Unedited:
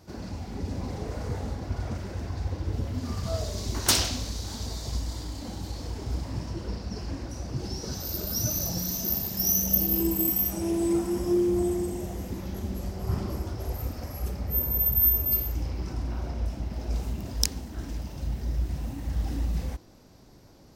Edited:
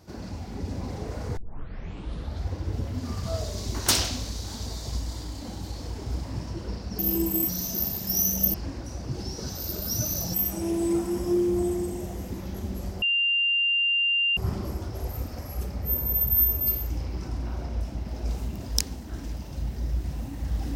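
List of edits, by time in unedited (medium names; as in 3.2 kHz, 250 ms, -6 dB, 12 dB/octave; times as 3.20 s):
1.37 s: tape start 1.14 s
6.99–8.79 s: swap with 9.84–10.34 s
13.02 s: add tone 2.79 kHz -20.5 dBFS 1.35 s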